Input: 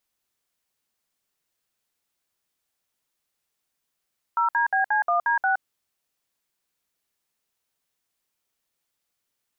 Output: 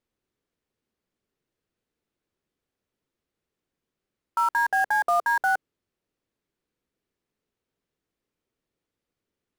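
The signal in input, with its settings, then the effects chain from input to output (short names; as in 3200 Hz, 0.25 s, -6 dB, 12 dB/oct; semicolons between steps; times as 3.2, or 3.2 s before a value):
DTMF "0DBC1D6", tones 0.118 s, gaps 60 ms, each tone -21.5 dBFS
LPF 1800 Hz 6 dB/oct; resonant low shelf 560 Hz +7 dB, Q 1.5; in parallel at -9 dB: bit-crush 5-bit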